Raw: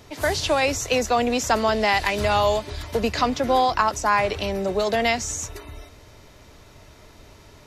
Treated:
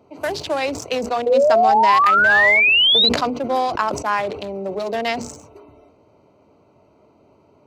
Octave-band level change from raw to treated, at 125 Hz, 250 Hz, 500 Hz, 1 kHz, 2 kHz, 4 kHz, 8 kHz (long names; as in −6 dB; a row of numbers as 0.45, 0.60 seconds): −6.5, −0.5, +2.5, +4.5, +9.0, +10.5, −8.0 decibels